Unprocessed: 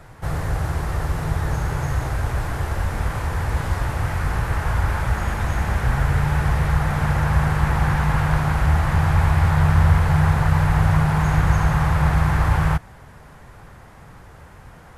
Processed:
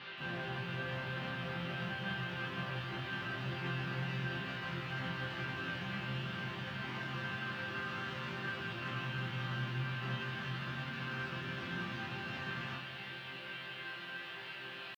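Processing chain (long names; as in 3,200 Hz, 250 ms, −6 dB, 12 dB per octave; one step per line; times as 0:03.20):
stylus tracing distortion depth 0.41 ms
echo ahead of the sound 246 ms −24 dB
downward compressor 10 to 1, threshold −23 dBFS, peak gain reduction 13.5 dB
parametric band 2,000 Hz −11.5 dB 1.9 octaves
pitch shifter +7 semitones
noise in a band 390–3,800 Hz −44 dBFS
loudspeaker in its box 160–5,000 Hz, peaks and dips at 210 Hz −6 dB, 340 Hz +7 dB, 1,600 Hz +10 dB, 2,800 Hz +9 dB
resonators tuned to a chord C3 sus4, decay 0.42 s
feedback echo at a low word length 176 ms, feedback 80%, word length 12 bits, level −11.5 dB
level +7 dB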